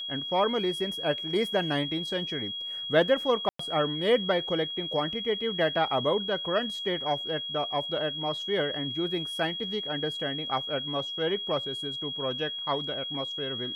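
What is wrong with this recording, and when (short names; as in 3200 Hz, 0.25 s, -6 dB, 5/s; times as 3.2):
tone 3300 Hz -33 dBFS
3.49–3.59 gap 0.104 s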